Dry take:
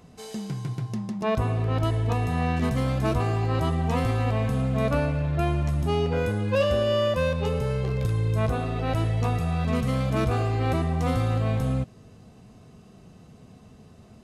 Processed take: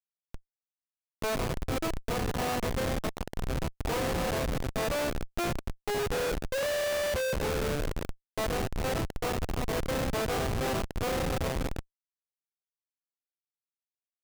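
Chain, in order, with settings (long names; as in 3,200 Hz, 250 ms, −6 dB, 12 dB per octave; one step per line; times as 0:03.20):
elliptic band-pass filter 460–8,800 Hz, stop band 50 dB
0:02.99–0:03.83: downward compressor 20 to 1, threshold −31 dBFS, peak gain reduction 7 dB
delay with a high-pass on its return 78 ms, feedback 41%, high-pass 1,900 Hz, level −9 dB
bit-depth reduction 8 bits, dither none
comparator with hysteresis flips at −28.5 dBFS
level +2.5 dB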